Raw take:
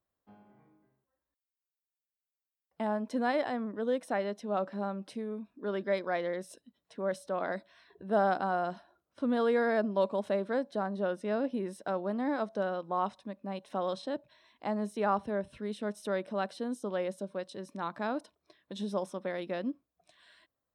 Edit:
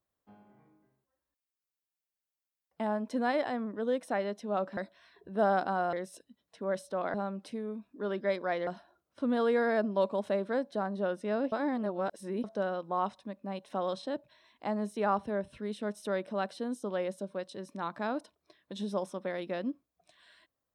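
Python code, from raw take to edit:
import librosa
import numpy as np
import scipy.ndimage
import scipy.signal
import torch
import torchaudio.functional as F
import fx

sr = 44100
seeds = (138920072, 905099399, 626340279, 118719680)

y = fx.edit(x, sr, fx.swap(start_s=4.77, length_s=1.53, other_s=7.51, other_length_s=1.16),
    fx.reverse_span(start_s=11.52, length_s=0.92), tone=tone)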